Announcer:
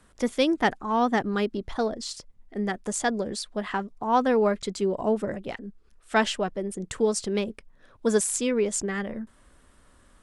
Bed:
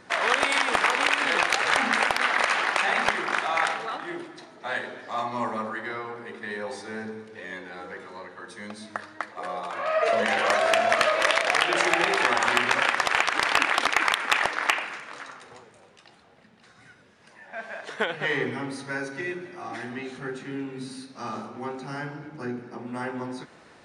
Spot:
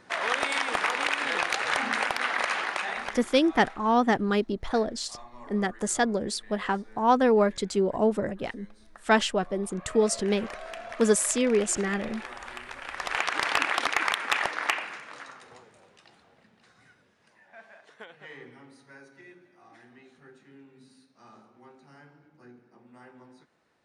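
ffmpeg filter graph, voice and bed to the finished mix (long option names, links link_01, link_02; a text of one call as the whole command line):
ffmpeg -i stem1.wav -i stem2.wav -filter_complex "[0:a]adelay=2950,volume=1dB[link_01];[1:a]volume=10.5dB,afade=type=out:start_time=2.58:duration=0.73:silence=0.199526,afade=type=in:start_time=12.84:duration=0.45:silence=0.177828,afade=type=out:start_time=16.19:duration=1.76:silence=0.16788[link_02];[link_01][link_02]amix=inputs=2:normalize=0" out.wav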